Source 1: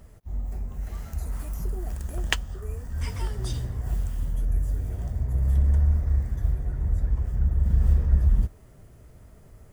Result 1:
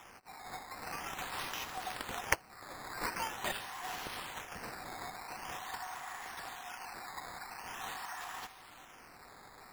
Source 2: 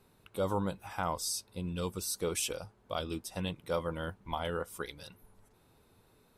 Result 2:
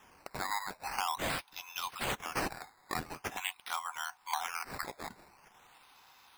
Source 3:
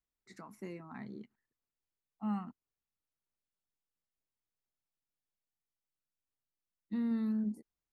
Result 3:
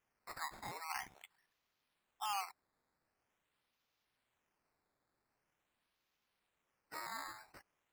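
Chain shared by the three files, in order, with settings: rippled Chebyshev high-pass 730 Hz, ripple 3 dB; compression 2:1, threshold -51 dBFS; decimation with a swept rate 10×, swing 100% 0.45 Hz; trim +12.5 dB

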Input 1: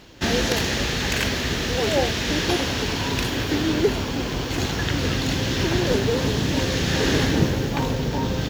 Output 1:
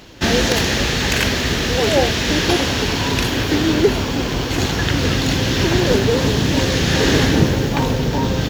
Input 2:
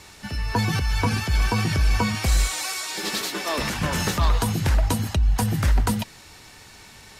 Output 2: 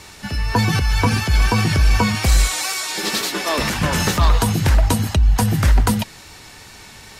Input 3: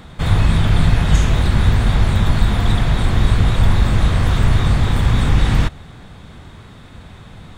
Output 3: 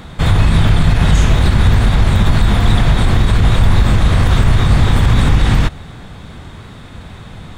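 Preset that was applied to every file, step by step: wow and flutter 16 cents; loudness maximiser +6.5 dB; trim -1 dB

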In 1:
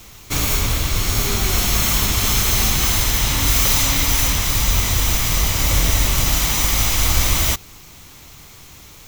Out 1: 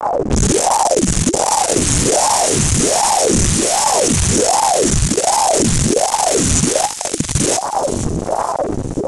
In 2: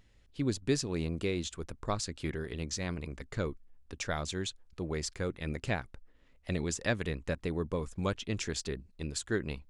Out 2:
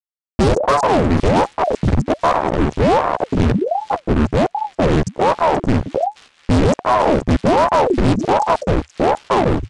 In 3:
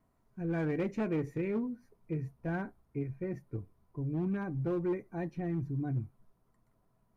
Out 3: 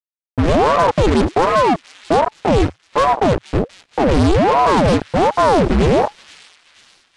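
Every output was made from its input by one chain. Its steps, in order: inverse Chebyshev band-stop 810–3200 Hz, stop band 50 dB; static phaser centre 1.2 kHz, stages 4; level-controlled noise filter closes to 1 kHz, open at -14.5 dBFS; peaking EQ 70 Hz -12 dB 0.84 oct; compression 3:1, threshold -30 dBFS; chorus voices 4, 0.48 Hz, delay 14 ms, depth 3.4 ms; fuzz box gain 55 dB, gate -52 dBFS; feedback echo behind a high-pass 478 ms, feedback 49%, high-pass 2.7 kHz, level -10.5 dB; resampled via 22.05 kHz; ring modulator with a swept carrier 470 Hz, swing 85%, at 1.3 Hz; trim +5 dB

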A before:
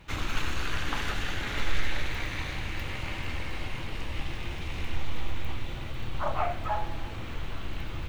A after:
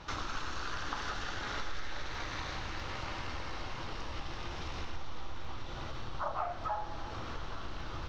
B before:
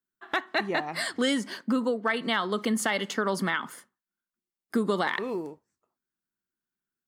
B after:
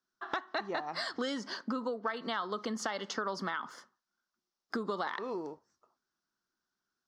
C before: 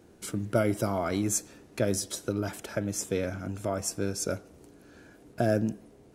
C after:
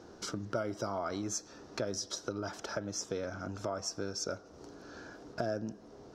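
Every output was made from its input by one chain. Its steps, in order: FFT filter 170 Hz 0 dB, 1.3 kHz +10 dB, 2.3 kHz -2 dB, 5.6 kHz +11 dB, 9.3 kHz -13 dB; compression 2.5:1, threshold -39 dBFS

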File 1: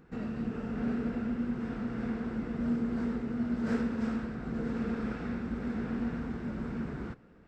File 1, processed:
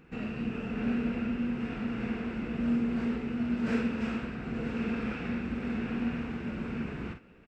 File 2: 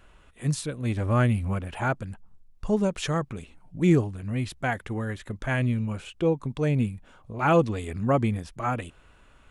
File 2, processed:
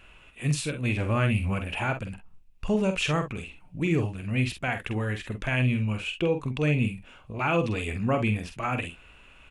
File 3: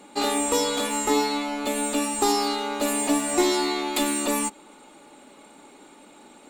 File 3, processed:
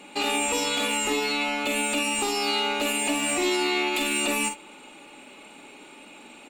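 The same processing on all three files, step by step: peaking EQ 2.6 kHz +13.5 dB 0.51 oct; peak limiter -17 dBFS; on a send: early reflections 47 ms -7.5 dB, 63 ms -17 dB

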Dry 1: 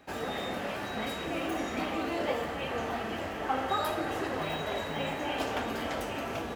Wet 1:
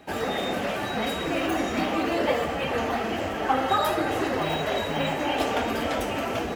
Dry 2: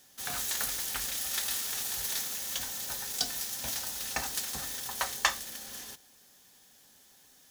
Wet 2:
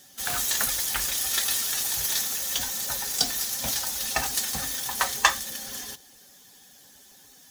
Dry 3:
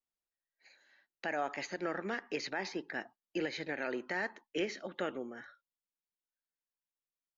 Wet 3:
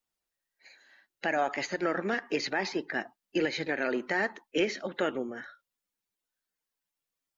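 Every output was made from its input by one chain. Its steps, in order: coarse spectral quantiser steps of 15 dB; trim +7.5 dB

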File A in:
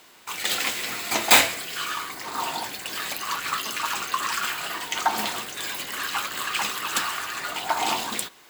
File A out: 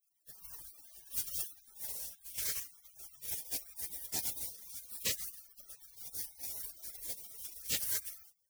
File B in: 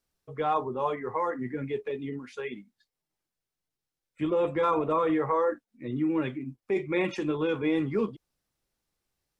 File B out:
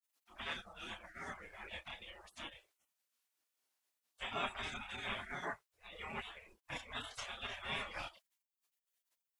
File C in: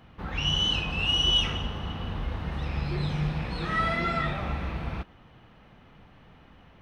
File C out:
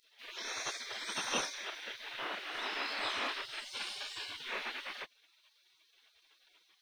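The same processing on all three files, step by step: chorus voices 4, 0.32 Hz, delay 28 ms, depth 1.1 ms; spectral gate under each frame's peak -30 dB weak; trim +10 dB

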